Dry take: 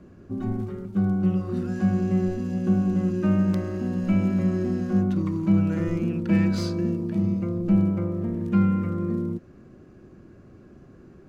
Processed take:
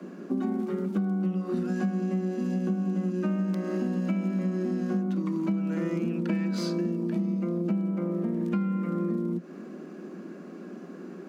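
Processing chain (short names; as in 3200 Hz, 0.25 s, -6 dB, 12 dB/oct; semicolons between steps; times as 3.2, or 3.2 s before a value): steep high-pass 170 Hz 96 dB/oct; compressor 12:1, threshold -34 dBFS, peak gain reduction 18.5 dB; gain +9 dB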